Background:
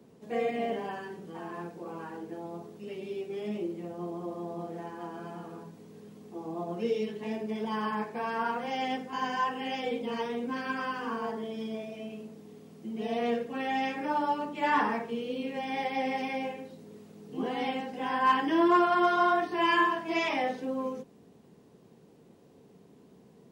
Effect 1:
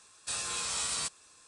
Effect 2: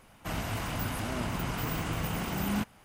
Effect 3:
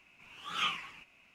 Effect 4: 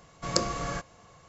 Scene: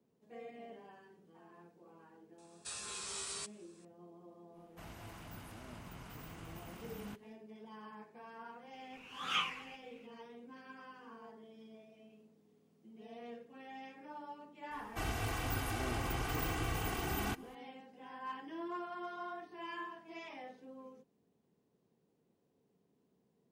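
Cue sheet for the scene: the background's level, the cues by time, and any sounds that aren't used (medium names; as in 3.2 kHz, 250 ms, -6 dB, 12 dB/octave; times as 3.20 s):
background -19.5 dB
2.38 s: add 1 -9.5 dB
4.52 s: add 2 -17.5 dB, fades 0.05 s
8.73 s: add 3 -2 dB
14.71 s: add 2 -5 dB + comb 2.6 ms, depth 70%
not used: 4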